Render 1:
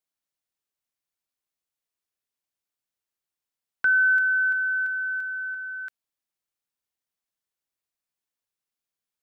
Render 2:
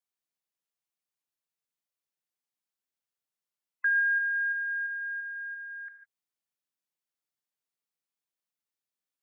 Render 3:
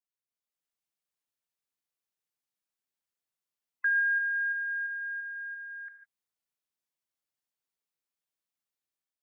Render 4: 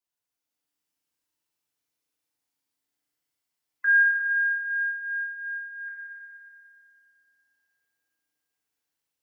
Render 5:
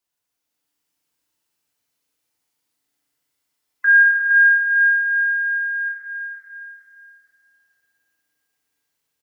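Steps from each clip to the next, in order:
gate on every frequency bin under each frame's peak −30 dB strong; frequency shifter +99 Hz; reverb whose tail is shaped and stops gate 180 ms flat, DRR 9 dB; level −5 dB
automatic gain control gain up to 7.5 dB; level −8.5 dB
feedback delay network reverb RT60 2.7 s, high-frequency decay 0.95×, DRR −6 dB
repeating echo 462 ms, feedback 37%, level −8 dB; level +7 dB

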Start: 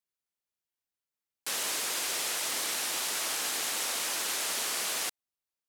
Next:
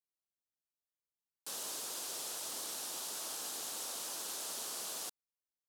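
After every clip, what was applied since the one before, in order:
parametric band 2,100 Hz −12 dB 0.95 octaves
level −8 dB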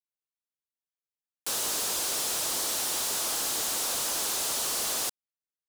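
leveller curve on the samples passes 5
level +2.5 dB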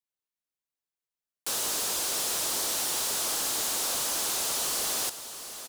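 single-tap delay 682 ms −11 dB

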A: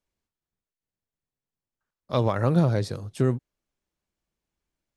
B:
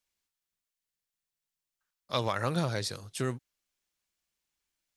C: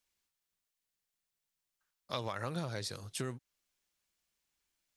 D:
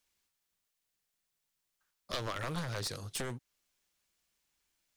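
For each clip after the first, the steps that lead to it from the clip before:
tilt shelving filter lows −8.5 dB, about 1,100 Hz; level −2.5 dB
downward compressor 2.5 to 1, threshold −39 dBFS, peak gain reduction 10 dB; level +1 dB
wavefolder on the positive side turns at −35 dBFS; level +3.5 dB

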